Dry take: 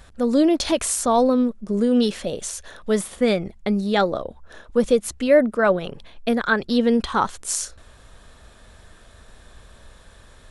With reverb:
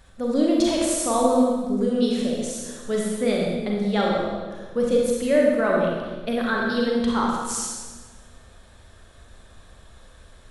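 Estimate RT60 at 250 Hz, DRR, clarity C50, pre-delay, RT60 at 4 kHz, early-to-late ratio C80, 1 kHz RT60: 1.7 s, −2.5 dB, −0.5 dB, 34 ms, 1.2 s, 1.5 dB, 1.3 s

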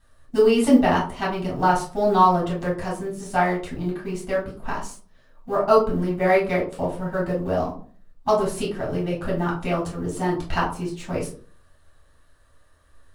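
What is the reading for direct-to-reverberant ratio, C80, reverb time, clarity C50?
−6.0 dB, 12.5 dB, 0.45 s, 7.0 dB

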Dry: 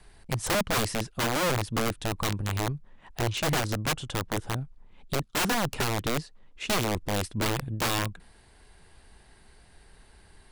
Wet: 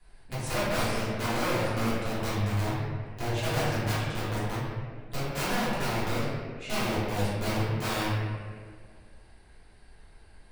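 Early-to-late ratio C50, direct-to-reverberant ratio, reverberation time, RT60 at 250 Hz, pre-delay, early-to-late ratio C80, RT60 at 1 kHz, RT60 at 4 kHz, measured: −2.5 dB, −12.5 dB, 1.9 s, 2.2 s, 3 ms, 0.0 dB, 1.6 s, 1.1 s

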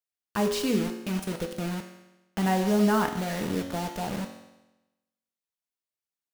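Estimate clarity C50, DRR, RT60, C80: 8.0 dB, 4.0 dB, 1.0 s, 10.0 dB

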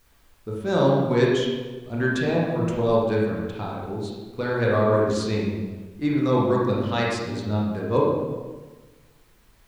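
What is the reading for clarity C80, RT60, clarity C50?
2.5 dB, 1.3 s, 0.0 dB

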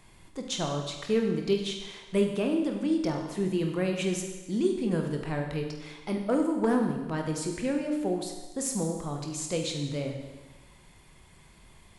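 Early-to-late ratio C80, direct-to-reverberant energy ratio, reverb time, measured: 7.0 dB, 2.5 dB, 1.2 s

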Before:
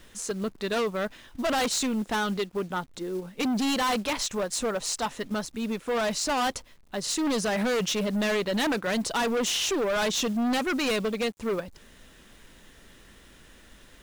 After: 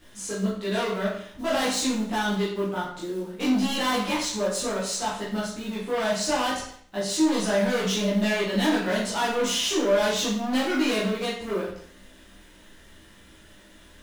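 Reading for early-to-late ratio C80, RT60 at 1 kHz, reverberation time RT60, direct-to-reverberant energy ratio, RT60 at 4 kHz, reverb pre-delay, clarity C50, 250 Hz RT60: 6.5 dB, 0.60 s, 0.60 s, −8.5 dB, 0.55 s, 10 ms, 3.0 dB, 0.60 s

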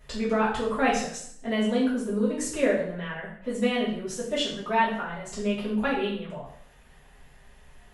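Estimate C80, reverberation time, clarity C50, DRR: 8.0 dB, 0.60 s, 4.5 dB, −9.5 dB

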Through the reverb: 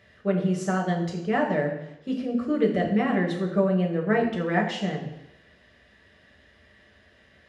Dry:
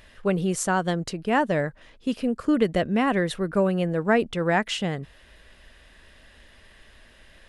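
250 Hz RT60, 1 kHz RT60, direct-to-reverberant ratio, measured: 0.80 s, 0.85 s, −1.0 dB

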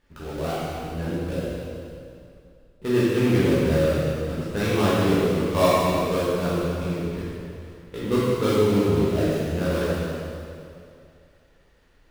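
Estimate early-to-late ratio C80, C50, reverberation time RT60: −2.0 dB, −4.5 dB, 2.5 s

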